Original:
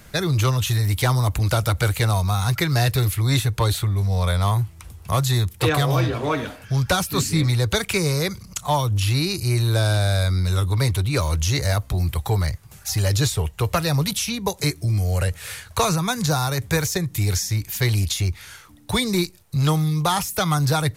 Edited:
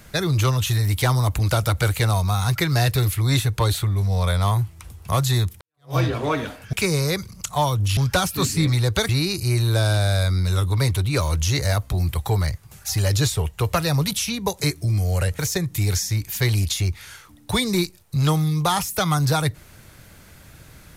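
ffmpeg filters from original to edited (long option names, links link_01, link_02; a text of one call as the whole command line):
ffmpeg -i in.wav -filter_complex "[0:a]asplit=6[link_01][link_02][link_03][link_04][link_05][link_06];[link_01]atrim=end=5.61,asetpts=PTS-STARTPTS,afade=type=out:start_time=5.606:duration=0.004:curve=hsin[link_07];[link_02]atrim=start=5.61:end=6.732,asetpts=PTS-STARTPTS,afade=type=in:duration=0.35:curve=exp[link_08];[link_03]atrim=start=7.848:end=9.092[link_09];[link_04]atrim=start=6.728:end=7.852[link_10];[link_05]atrim=start=9.088:end=15.392[link_11];[link_06]atrim=start=16.788[link_12];[link_07][link_08]concat=n=2:v=0:a=1[link_13];[link_13][link_09]acrossfade=duration=0.004:curve1=hsin:curve2=hsin[link_14];[link_14][link_10]acrossfade=duration=0.004:curve1=hsin:curve2=hsin[link_15];[link_15][link_11]acrossfade=duration=0.004:curve1=hsin:curve2=hsin[link_16];[link_16][link_12]acrossfade=duration=0.004:curve1=hsin:curve2=hsin" out.wav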